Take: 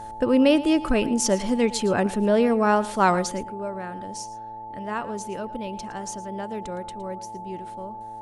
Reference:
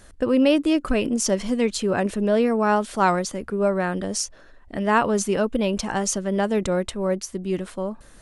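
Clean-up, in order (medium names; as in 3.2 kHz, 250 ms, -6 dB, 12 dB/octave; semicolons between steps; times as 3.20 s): de-hum 112.6 Hz, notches 8; band-stop 870 Hz, Q 30; inverse comb 113 ms -17 dB; trim 0 dB, from 3.44 s +11 dB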